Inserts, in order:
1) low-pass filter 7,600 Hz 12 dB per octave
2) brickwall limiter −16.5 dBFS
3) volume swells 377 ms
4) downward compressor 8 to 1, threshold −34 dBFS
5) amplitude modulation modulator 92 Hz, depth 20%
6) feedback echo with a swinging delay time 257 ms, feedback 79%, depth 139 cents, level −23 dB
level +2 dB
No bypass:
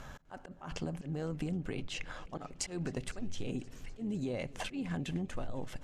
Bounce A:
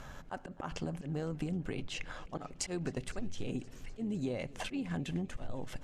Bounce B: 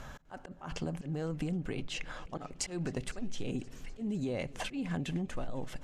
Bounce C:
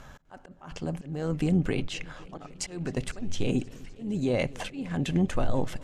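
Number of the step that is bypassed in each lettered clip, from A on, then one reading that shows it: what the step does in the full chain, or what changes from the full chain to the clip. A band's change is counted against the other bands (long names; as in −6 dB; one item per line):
2, average gain reduction 1.5 dB
5, change in integrated loudness +1.5 LU
4, average gain reduction 5.5 dB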